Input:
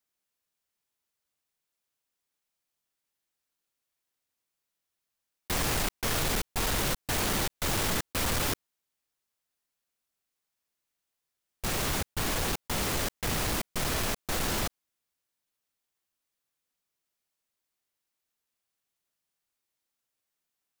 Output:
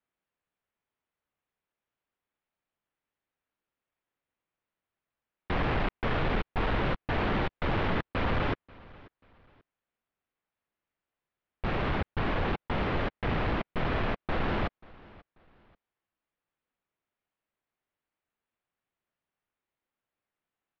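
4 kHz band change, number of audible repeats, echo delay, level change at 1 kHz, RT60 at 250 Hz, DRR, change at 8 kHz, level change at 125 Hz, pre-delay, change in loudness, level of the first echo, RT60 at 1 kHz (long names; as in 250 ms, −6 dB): −8.0 dB, 2, 537 ms, +2.5 dB, no reverb audible, no reverb audible, below −35 dB, +3.0 dB, no reverb audible, −1.5 dB, −23.0 dB, no reverb audible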